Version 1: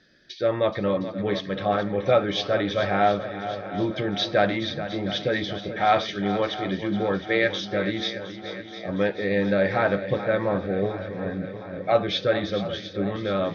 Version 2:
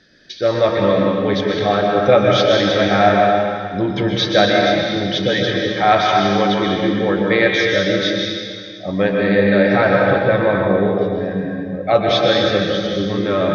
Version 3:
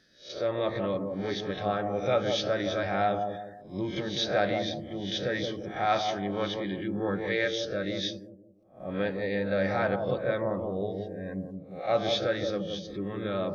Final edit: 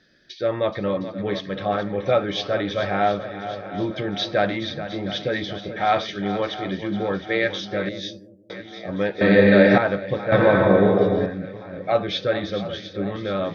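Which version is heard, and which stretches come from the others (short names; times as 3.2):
1
7.89–8.5 from 3
9.21–9.78 from 2
10.32–11.26 from 2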